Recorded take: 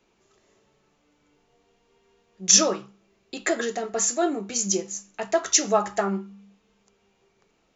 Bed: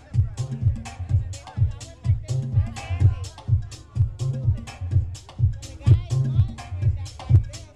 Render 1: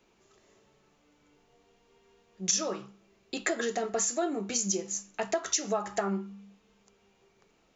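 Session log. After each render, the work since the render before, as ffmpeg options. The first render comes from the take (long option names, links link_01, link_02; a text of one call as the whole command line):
ffmpeg -i in.wav -af "acompressor=threshold=-26dB:ratio=6" out.wav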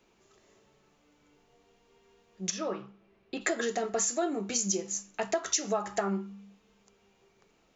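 ffmpeg -i in.wav -filter_complex "[0:a]asplit=3[link_01][link_02][link_03];[link_01]afade=type=out:start_time=2.49:duration=0.02[link_04];[link_02]lowpass=2800,afade=type=in:start_time=2.49:duration=0.02,afade=type=out:start_time=3.4:duration=0.02[link_05];[link_03]afade=type=in:start_time=3.4:duration=0.02[link_06];[link_04][link_05][link_06]amix=inputs=3:normalize=0" out.wav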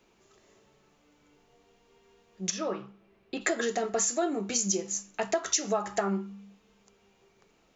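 ffmpeg -i in.wav -af "volume=1.5dB" out.wav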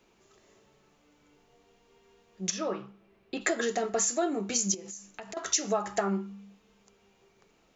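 ffmpeg -i in.wav -filter_complex "[0:a]asettb=1/sr,asplit=3[link_01][link_02][link_03];[link_01]atrim=end=4.744[link_04];[link_02]atrim=start=4.74:end=5.37,asetpts=PTS-STARTPTS,afade=type=in:duration=0.004:curve=qsin,afade=type=out:start_time=0.626:duration=0.004:curve=qsin,acompressor=threshold=-38dB:ratio=12:attack=3.2:release=140:knee=1:detection=peak[link_05];[link_03]atrim=start=5.366[link_06];[link_04][link_05]acrossfade=duration=0.004:curve1=hsin:curve2=qsin[link_07];[link_07][link_06]acrossfade=duration=0.004:curve1=qsin:curve2=hsin" out.wav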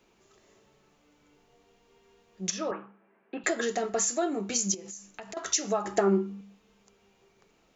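ffmpeg -i in.wav -filter_complex "[0:a]asettb=1/sr,asplit=3[link_01][link_02][link_03];[link_01]atrim=end=2.714[link_04];[link_02]atrim=start=2.71:end=3.44,asetpts=PTS-STARTPTS,afade=type=in:duration=0.004:curve=qsin,afade=type=out:start_time=0.726:duration=0.004:curve=qsin,highpass=frequency=210:width=0.5412,highpass=frequency=210:width=1.3066,equalizer=frequency=370:width_type=q:width=4:gain=-5,equalizer=frequency=910:width_type=q:width=4:gain=5,equalizer=frequency=1600:width_type=q:width=4:gain=7,lowpass=frequency=2300:width=0.5412,lowpass=frequency=2300:width=1.3066[link_05];[link_03]atrim=start=3.436[link_06];[link_04][link_05]acrossfade=duration=0.004:curve1=hsin:curve2=qsin[link_07];[link_07][link_06]acrossfade=duration=0.004:curve1=qsin:curve2=hsin,asettb=1/sr,asplit=3[link_08][link_09][link_10];[link_08]atrim=end=5.854[link_11];[link_09]atrim=start=5.85:end=6.41,asetpts=PTS-STARTPTS,afade=type=in:duration=0.004:curve=qsin,afade=type=out:start_time=0.556:duration=0.004:curve=qsin,equalizer=frequency=330:width=1.5:gain=13[link_12];[link_10]atrim=start=6.406[link_13];[link_11][link_12]acrossfade=duration=0.004:curve1=hsin:curve2=qsin[link_14];[link_14][link_13]acrossfade=duration=0.004:curve1=qsin:curve2=hsin" out.wav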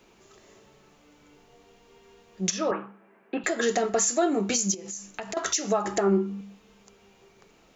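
ffmpeg -i in.wav -af "acontrast=83,alimiter=limit=-14dB:level=0:latency=1:release=283" out.wav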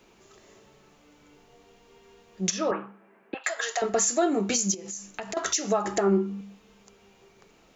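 ffmpeg -i in.wav -filter_complex "[0:a]asettb=1/sr,asplit=3[link_01][link_02][link_03];[link_01]atrim=end=3.344[link_04];[link_02]atrim=start=3.34:end=3.82,asetpts=PTS-STARTPTS,afade=type=in:duration=0.004:curve=qsin,afade=type=out:start_time=0.476:duration=0.004:curve=qsin,highpass=frequency=680:width=0.5412,highpass=frequency=680:width=1.3066[link_05];[link_03]atrim=start=3.816[link_06];[link_04][link_05]acrossfade=duration=0.004:curve1=hsin:curve2=qsin[link_07];[link_07][link_06]acrossfade=duration=0.004:curve1=qsin:curve2=hsin" out.wav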